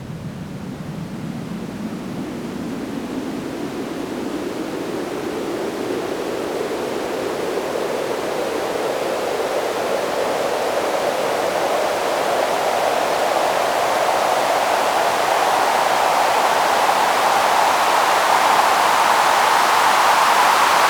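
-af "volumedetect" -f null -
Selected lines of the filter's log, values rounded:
mean_volume: -19.0 dB
max_volume: -2.6 dB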